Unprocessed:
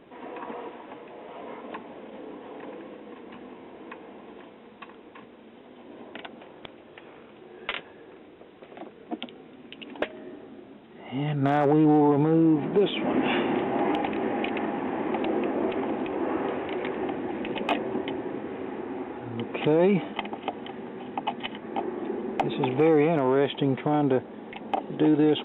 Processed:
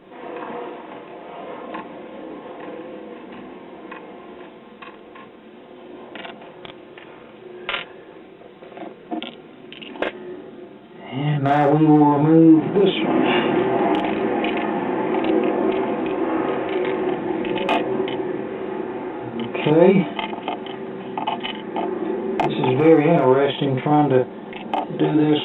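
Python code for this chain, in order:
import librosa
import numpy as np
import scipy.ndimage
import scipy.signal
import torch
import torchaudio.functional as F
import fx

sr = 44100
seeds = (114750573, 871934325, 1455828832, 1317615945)

y = x + 0.38 * np.pad(x, (int(5.7 * sr / 1000.0), 0))[:len(x)]
y = fx.room_early_taps(y, sr, ms=(31, 47), db=(-7.5, -3.5))
y = y * librosa.db_to_amplitude(4.0)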